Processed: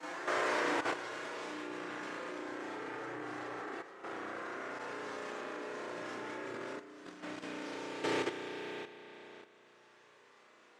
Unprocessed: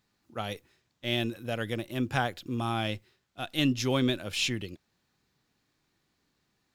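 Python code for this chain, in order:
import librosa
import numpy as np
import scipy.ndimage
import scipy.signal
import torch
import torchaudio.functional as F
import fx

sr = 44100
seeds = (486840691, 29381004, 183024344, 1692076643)

p1 = fx.spec_blur(x, sr, span_ms=853.0)
p2 = fx.tube_stage(p1, sr, drive_db=43.0, bias=0.25)
p3 = fx.noise_vocoder(p2, sr, seeds[0], bands=3)
p4 = fx.chorus_voices(p3, sr, voices=6, hz=0.9, base_ms=18, depth_ms=1.9, mix_pct=60)
p5 = fx.quant_companded(p4, sr, bits=6)
p6 = p4 + (p5 * 10.0 ** (-11.0 / 20.0))
p7 = fx.doubler(p6, sr, ms=23.0, db=-8.0)
p8 = fx.stretch_vocoder(p7, sr, factor=1.6)
p9 = scipy.signal.sosfilt(scipy.signal.butter(2, 490.0, 'highpass', fs=sr, output='sos'), p8)
p10 = fx.rev_spring(p9, sr, rt60_s=3.2, pass_ms=(33,), chirp_ms=80, drr_db=-3.5)
p11 = fx.over_compress(p10, sr, threshold_db=-51.0, ratio=-0.5)
p12 = fx.lowpass(p11, sr, hz=1600.0, slope=6)
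p13 = fx.level_steps(p12, sr, step_db=10)
y = p13 * 10.0 ** (17.5 / 20.0)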